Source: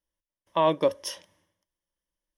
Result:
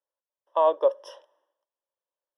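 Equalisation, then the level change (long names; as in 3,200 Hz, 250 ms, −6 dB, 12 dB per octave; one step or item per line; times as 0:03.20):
moving average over 20 samples
inverse Chebyshev high-pass filter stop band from 230 Hz, stop band 40 dB
+4.0 dB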